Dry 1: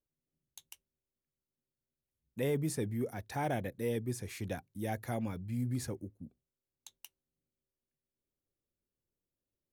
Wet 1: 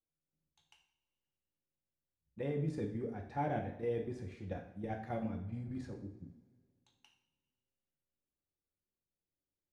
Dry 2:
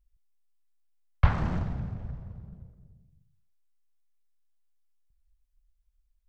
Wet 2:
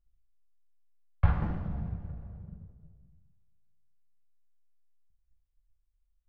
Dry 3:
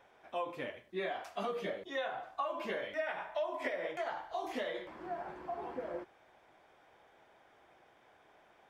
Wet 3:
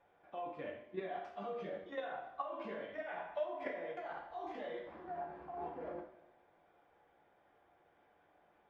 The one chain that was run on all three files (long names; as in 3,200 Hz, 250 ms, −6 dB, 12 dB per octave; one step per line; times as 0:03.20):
head-to-tape spacing loss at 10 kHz 27 dB
output level in coarse steps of 9 dB
coupled-rooms reverb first 0.56 s, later 2.2 s, from −20 dB, DRR 1 dB
level −1 dB